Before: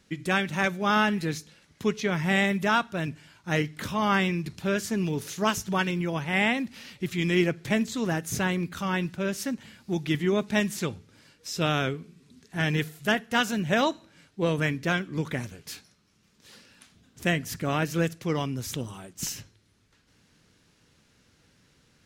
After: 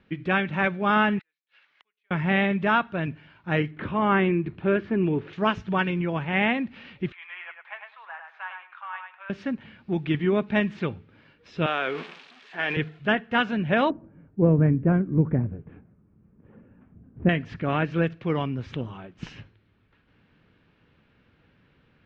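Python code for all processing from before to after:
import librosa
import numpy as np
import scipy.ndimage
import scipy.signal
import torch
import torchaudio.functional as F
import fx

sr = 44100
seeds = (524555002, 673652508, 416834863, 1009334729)

y = fx.chain(x, sr, fx.highpass(hz=1300.0, slope=12),
    fx.gate_flip(shuts_db=-33.0, range_db=-42),
    fx.band_squash(depth_pct=40), at=(1.19, 2.11))
y = fx.chain(y, sr, fx.lowpass(hz=2700.0, slope=12),
    fx.peak_eq(hz=350.0, db=8.0, octaves=0.41), at=(3.71, 5.33))
y = fx.chain(y, sr, fx.steep_highpass(hz=880.0, slope=36),
    fx.spacing_loss(db_at_10k=45),
    fx.echo_feedback(ms=102, feedback_pct=17, wet_db=-5.5), at=(7.12, 9.3))
y = fx.chain(y, sr, fx.crossing_spikes(level_db=-29.5),
    fx.highpass(hz=520.0, slope=12),
    fx.sustainer(db_per_s=22.0), at=(11.66, 12.77))
y = fx.chain(y, sr, fx.gaussian_blur(sigma=4.7),
    fx.tilt_shelf(db=9.0, hz=650.0), at=(13.9, 17.29))
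y = scipy.signal.sosfilt(scipy.signal.butter(4, 2900.0, 'lowpass', fs=sr, output='sos'), y)
y = fx.notch(y, sr, hz=2000.0, q=23.0)
y = y * librosa.db_to_amplitude(2.0)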